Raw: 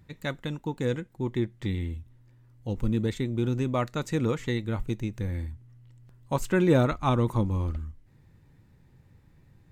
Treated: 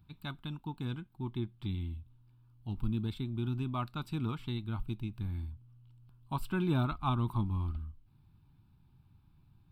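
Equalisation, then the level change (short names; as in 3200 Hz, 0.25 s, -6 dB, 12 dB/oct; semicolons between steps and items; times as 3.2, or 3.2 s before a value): fixed phaser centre 1900 Hz, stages 6; -5.0 dB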